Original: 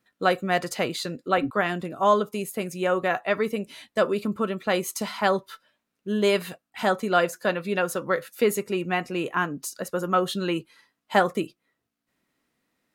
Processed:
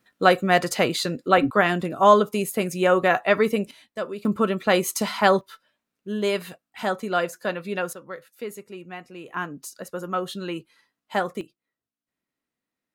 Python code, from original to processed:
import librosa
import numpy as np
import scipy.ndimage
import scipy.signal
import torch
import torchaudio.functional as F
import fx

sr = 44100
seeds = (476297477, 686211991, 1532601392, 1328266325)

y = fx.gain(x, sr, db=fx.steps((0.0, 5.0), (3.71, -7.5), (4.25, 4.5), (5.41, -2.5), (7.93, -12.0), (9.29, -4.5), (11.41, -12.0)))